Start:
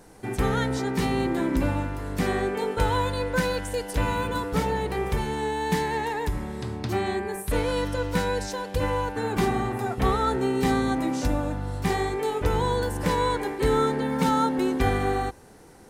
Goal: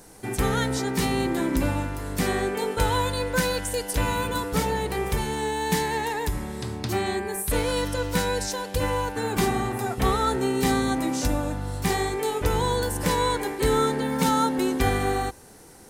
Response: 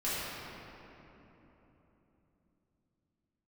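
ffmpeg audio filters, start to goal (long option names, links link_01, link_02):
-af "highshelf=frequency=4400:gain=10"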